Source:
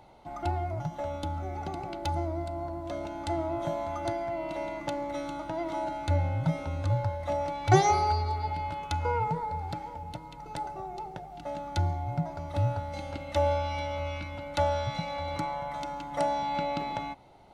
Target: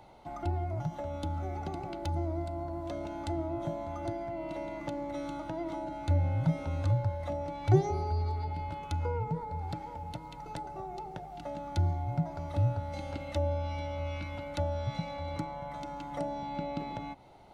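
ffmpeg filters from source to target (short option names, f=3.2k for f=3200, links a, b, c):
-filter_complex "[0:a]acrossover=split=480[a][b];[b]acompressor=threshold=-40dB:ratio=10[c];[a][c]amix=inputs=2:normalize=0"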